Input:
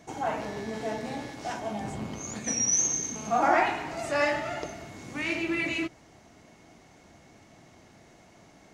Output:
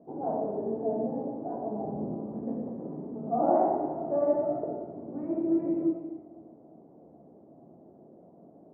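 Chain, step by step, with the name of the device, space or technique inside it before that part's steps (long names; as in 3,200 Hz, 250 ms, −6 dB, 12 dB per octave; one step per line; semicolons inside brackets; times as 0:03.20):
supermarket ceiling speaker (band-pass filter 210–6,800 Hz; convolution reverb RT60 1.3 s, pre-delay 4 ms, DRR −1 dB)
inverse Chebyshev low-pass filter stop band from 3,700 Hz, stop band 80 dB
level +2 dB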